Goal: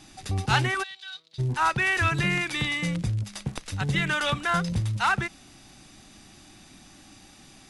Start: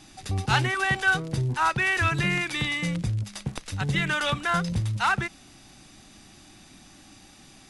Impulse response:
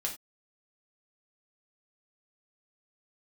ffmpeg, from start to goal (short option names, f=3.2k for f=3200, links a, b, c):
-filter_complex "[0:a]asplit=3[a][b][c];[a]afade=t=out:st=0.82:d=0.02[d];[b]bandpass=f=3.9k:t=q:w=5.8:csg=0,afade=t=in:st=0.82:d=0.02,afade=t=out:st=1.38:d=0.02[e];[c]afade=t=in:st=1.38:d=0.02[f];[d][e][f]amix=inputs=3:normalize=0"